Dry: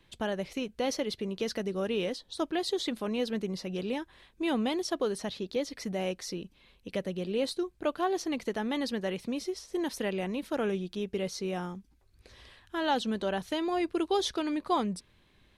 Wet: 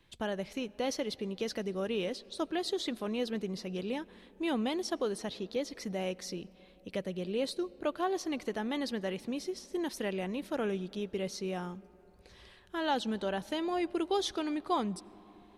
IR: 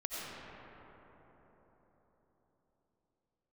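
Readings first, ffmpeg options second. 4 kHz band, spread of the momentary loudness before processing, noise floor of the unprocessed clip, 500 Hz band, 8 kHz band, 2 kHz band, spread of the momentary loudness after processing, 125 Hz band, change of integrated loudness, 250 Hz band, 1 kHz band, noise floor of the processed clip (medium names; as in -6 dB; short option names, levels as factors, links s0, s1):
-2.5 dB, 7 LU, -65 dBFS, -2.5 dB, -2.5 dB, -2.5 dB, 7 LU, -2.5 dB, -2.5 dB, -2.5 dB, -2.5 dB, -59 dBFS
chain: -filter_complex "[0:a]asplit=2[s0][s1];[1:a]atrim=start_sample=2205[s2];[s1][s2]afir=irnorm=-1:irlink=0,volume=0.0631[s3];[s0][s3]amix=inputs=2:normalize=0,volume=0.708"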